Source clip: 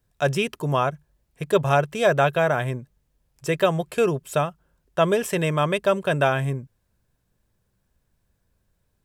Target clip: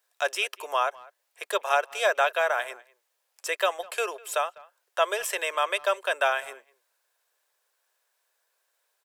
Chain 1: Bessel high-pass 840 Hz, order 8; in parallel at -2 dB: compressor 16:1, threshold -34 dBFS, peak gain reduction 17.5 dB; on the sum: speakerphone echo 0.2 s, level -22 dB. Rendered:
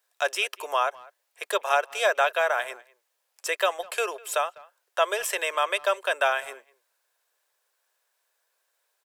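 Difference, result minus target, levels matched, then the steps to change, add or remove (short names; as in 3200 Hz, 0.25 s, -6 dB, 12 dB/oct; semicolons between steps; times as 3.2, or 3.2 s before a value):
compressor: peak gain reduction -8.5 dB
change: compressor 16:1, threshold -43 dBFS, peak gain reduction 25.5 dB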